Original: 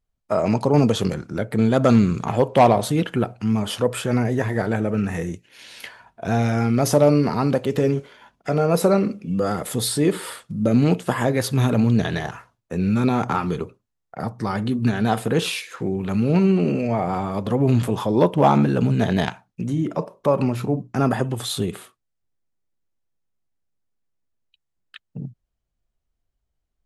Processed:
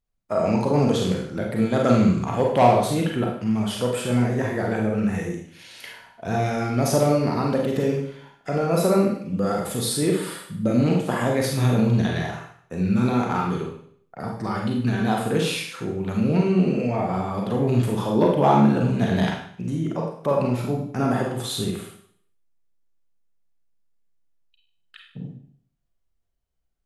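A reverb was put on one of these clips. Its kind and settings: Schroeder reverb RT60 0.59 s, combs from 33 ms, DRR -0.5 dB; gain -4.5 dB

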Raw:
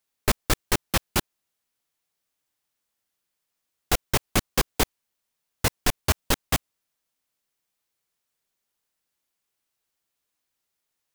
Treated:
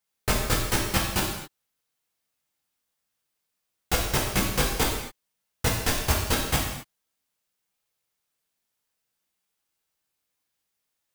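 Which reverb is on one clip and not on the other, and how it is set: non-linear reverb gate 0.29 s falling, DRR -3.5 dB; gain -4.5 dB

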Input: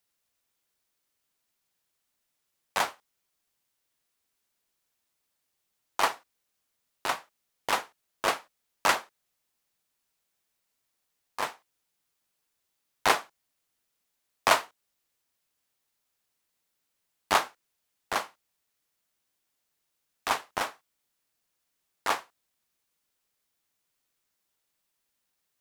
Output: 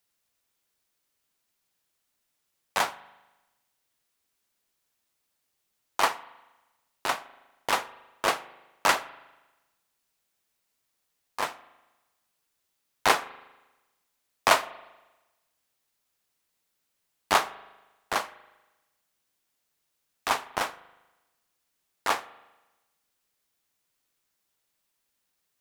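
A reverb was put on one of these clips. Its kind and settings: spring tank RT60 1.1 s, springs 39 ms, chirp 80 ms, DRR 16.5 dB; gain +1.5 dB

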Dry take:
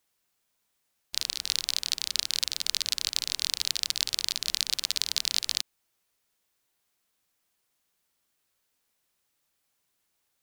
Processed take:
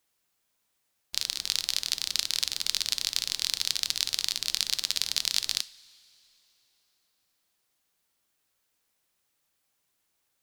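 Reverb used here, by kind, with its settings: two-slope reverb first 0.36 s, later 3.4 s, from -18 dB, DRR 14 dB

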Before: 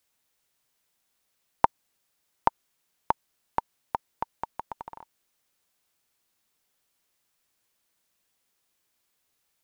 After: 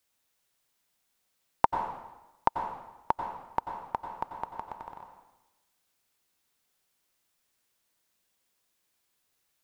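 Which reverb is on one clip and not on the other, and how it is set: plate-style reverb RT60 1 s, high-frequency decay 0.95×, pre-delay 80 ms, DRR 5 dB; gain -2 dB

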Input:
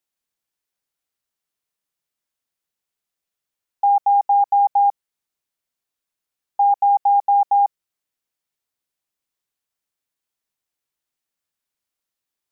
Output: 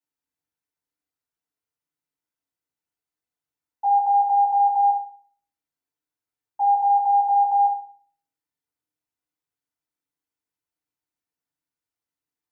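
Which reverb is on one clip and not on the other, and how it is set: FDN reverb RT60 0.47 s, low-frequency decay 1.55×, high-frequency decay 0.4×, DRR -8.5 dB; gain -14 dB

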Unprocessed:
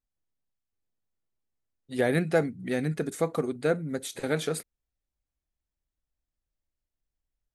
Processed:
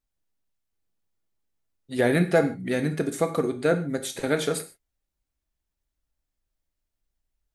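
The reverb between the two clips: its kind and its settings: non-linear reverb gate 0.17 s falling, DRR 7.5 dB; gain +3.5 dB

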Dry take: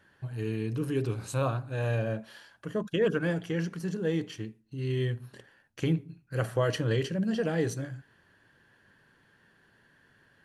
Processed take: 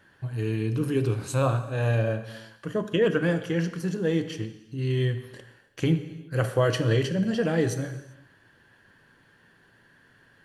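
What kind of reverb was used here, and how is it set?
non-linear reverb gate 0.42 s falling, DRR 10 dB; gain +4 dB

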